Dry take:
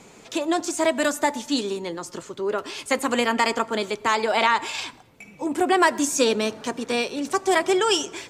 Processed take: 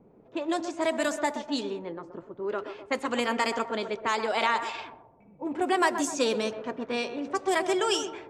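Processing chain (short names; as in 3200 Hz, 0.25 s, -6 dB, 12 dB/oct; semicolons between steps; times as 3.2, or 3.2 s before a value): narrowing echo 0.127 s, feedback 54%, band-pass 650 Hz, level -8 dB; low-pass opened by the level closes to 520 Hz, open at -16.5 dBFS; gain -6 dB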